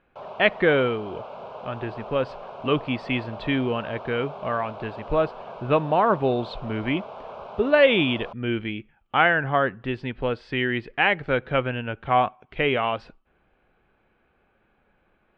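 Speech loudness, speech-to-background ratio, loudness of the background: −24.5 LKFS, 14.5 dB, −39.0 LKFS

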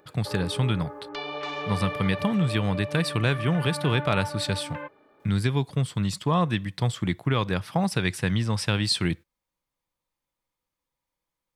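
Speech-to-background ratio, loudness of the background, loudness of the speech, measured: 8.5 dB, −35.0 LKFS, −26.5 LKFS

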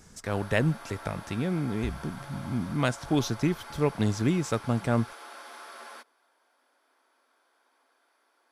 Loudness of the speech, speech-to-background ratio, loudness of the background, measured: −29.5 LKFS, 15.0 dB, −44.5 LKFS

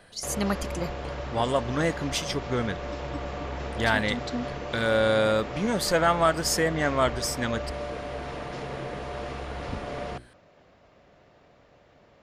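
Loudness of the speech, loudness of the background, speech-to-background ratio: −26.5 LKFS, −35.0 LKFS, 8.5 dB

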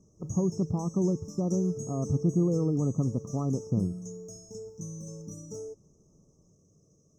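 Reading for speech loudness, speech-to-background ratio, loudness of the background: −29.5 LKFS, 12.0 dB, −41.5 LKFS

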